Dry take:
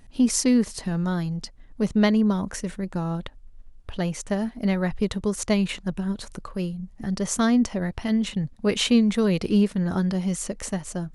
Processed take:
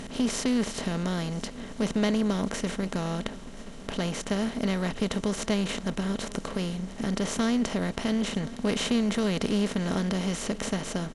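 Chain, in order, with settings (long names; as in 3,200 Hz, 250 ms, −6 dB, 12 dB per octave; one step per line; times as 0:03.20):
compressor on every frequency bin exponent 0.4
parametric band 10,000 Hz −4.5 dB 1.1 octaves
on a send: single-tap delay 1,028 ms −20.5 dB
on the sum: level −9 dB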